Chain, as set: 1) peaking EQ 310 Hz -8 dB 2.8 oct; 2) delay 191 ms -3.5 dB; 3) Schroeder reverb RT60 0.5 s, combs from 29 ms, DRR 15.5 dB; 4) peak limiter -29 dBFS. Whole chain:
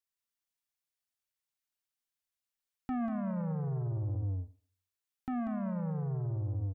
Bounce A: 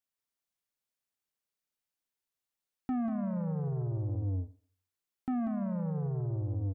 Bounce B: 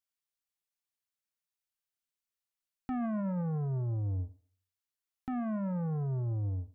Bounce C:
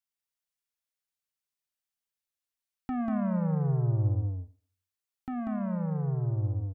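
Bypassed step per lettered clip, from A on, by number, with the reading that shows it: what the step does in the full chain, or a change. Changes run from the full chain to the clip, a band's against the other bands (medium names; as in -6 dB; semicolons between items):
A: 1, loudness change +1.0 LU; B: 2, loudness change +1.0 LU; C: 4, mean gain reduction 4.0 dB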